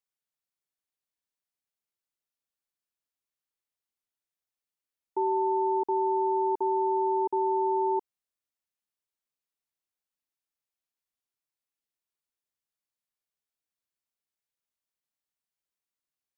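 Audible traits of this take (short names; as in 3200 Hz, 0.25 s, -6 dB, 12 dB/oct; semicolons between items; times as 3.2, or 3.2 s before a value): noise floor -92 dBFS; spectral tilt +1.5 dB/oct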